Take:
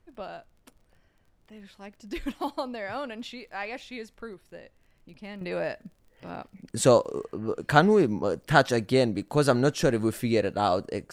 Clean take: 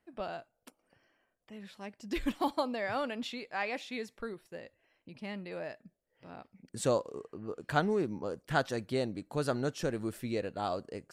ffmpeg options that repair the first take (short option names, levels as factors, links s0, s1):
-af "adeclick=t=4,agate=range=0.0891:threshold=0.00178,asetnsamples=n=441:p=0,asendcmd='5.41 volume volume -10dB',volume=1"